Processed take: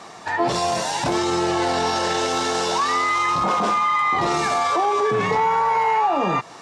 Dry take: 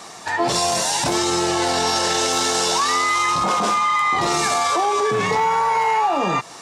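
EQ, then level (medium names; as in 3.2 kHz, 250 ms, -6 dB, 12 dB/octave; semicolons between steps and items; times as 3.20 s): treble shelf 4.3 kHz -10.5 dB; treble shelf 12 kHz -7 dB; 0.0 dB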